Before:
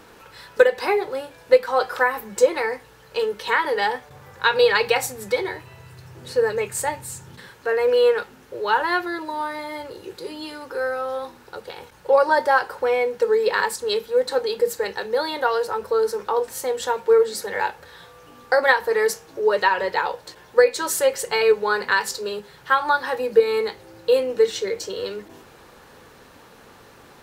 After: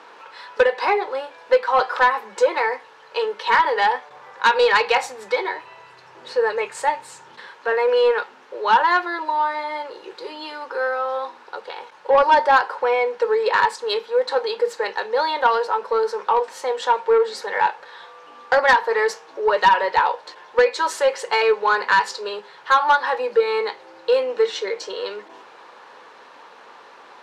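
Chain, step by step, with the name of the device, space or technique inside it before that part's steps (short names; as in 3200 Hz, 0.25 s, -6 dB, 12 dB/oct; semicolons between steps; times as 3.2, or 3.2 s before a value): intercom (BPF 490–4300 Hz; bell 980 Hz +6 dB 0.45 oct; soft clip -11 dBFS, distortion -16 dB); gain +3.5 dB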